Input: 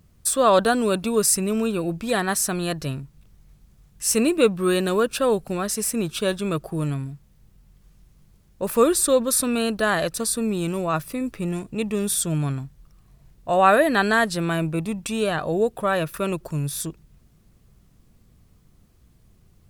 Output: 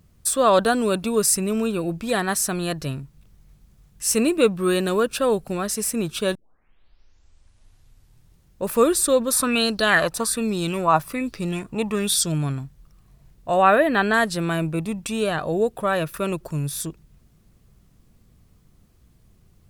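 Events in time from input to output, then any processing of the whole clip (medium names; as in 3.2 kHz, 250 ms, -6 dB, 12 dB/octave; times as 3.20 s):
6.35 s: tape start 2.28 s
9.31–12.32 s: sweeping bell 1.2 Hz 830–5100 Hz +13 dB
13.62–14.14 s: high-order bell 7.2 kHz -9.5 dB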